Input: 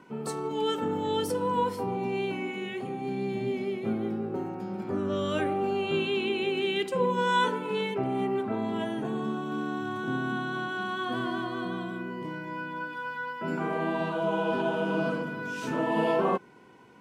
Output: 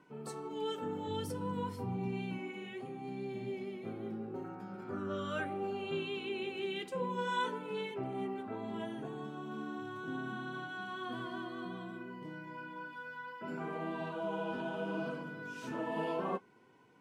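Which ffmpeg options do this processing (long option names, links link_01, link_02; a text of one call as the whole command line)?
ffmpeg -i in.wav -filter_complex "[0:a]asplit=3[link_01][link_02][link_03];[link_01]afade=type=out:start_time=1.07:duration=0.02[link_04];[link_02]asubboost=boost=7:cutoff=210,afade=type=in:start_time=1.07:duration=0.02,afade=type=out:start_time=2.37:duration=0.02[link_05];[link_03]afade=type=in:start_time=2.37:duration=0.02[link_06];[link_04][link_05][link_06]amix=inputs=3:normalize=0,flanger=delay=6.6:depth=5:regen=-42:speed=0.65:shape=sinusoidal,asettb=1/sr,asplit=3[link_07][link_08][link_09];[link_07]atrim=end=4.444[link_10];[link_08]atrim=start=4.44:end=5.45,asetpts=PTS-STARTPTS,afade=type=in:duration=0.004:curve=qsin,afade=type=out:start_time=1.006:duration=0.004:curve=qsin,equalizer=frequency=1400:width=3.5:gain=11[link_11];[link_09]atrim=start=5.446[link_12];[link_10][link_11]acrossfade=duration=0.004:curve1=hsin:curve2=qsin[link_13];[link_13][link_12]acrossfade=duration=0.004:curve1=qsin:curve2=hsin,volume=-6dB" out.wav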